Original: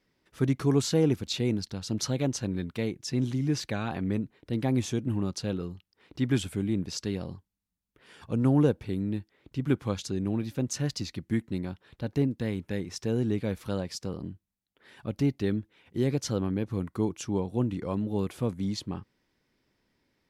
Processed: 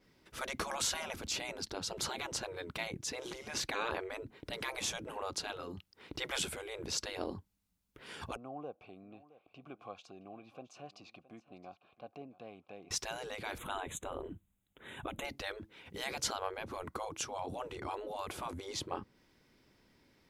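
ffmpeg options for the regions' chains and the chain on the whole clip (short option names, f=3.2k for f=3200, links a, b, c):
-filter_complex "[0:a]asettb=1/sr,asplit=3[a][b][c];[a]atrim=end=8.364[d];[b]atrim=start=8.36:end=12.91,asetpts=PTS-STARTPTS,afade=t=in:d=0.004:c=qsin,afade=t=out:st=4.546:d=0.004:c=qsin,acompressor=threshold=-36dB:ratio=2:attack=3.2:release=140:knee=1:detection=peak,asplit=3[e][f][g];[e]bandpass=f=730:t=q:w=8,volume=0dB[h];[f]bandpass=f=1.09k:t=q:w=8,volume=-6dB[i];[g]bandpass=f=2.44k:t=q:w=8,volume=-9dB[j];[h][i][j]amix=inputs=3:normalize=0,aecho=1:1:668:0.126,atrim=end_sample=200655[k];[c]atrim=start=12.906[l];[d][k]acrossfade=d=0.004:c1=hsin:c2=qsin[m];[m][l]acrossfade=d=0.004:c1=qsin:c2=hsin,asettb=1/sr,asplit=3[n][o][p];[n]atrim=end=13.584[q];[o]atrim=start=13.58:end=15.25,asetpts=PTS-STARTPTS,afade=t=in:d=0.004:c=qsin,afade=t=out:st=1.666:d=0.004:c=qsin,asuperstop=centerf=5000:order=12:qfactor=2,lowshelf=f=180:g=8[r];[p]atrim=start=15.246[s];[q][r]acrossfade=d=0.004:c1=hsin:c2=qsin[t];[t][s]acrossfade=d=0.004:c1=qsin:c2=hsin,bandreject=f=1.8k:w=19,afftfilt=real='re*lt(hypot(re,im),0.0562)':imag='im*lt(hypot(re,im),0.0562)':win_size=1024:overlap=0.75,adynamicequalizer=threshold=0.00141:dfrequency=1500:dqfactor=0.7:tfrequency=1500:tqfactor=0.7:attack=5:release=100:ratio=0.375:range=2.5:mode=cutabove:tftype=highshelf,volume=6dB"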